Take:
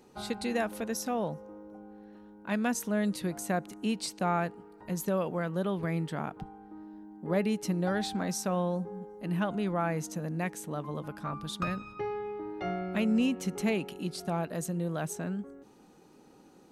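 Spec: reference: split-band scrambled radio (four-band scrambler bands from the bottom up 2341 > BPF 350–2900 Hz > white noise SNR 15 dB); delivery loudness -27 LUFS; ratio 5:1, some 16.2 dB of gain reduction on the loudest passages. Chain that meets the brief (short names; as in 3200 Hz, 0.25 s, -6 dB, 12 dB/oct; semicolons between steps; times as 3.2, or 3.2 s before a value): compressor 5:1, threshold -43 dBFS; four-band scrambler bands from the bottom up 2341; BPF 350–2900 Hz; white noise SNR 15 dB; gain +24 dB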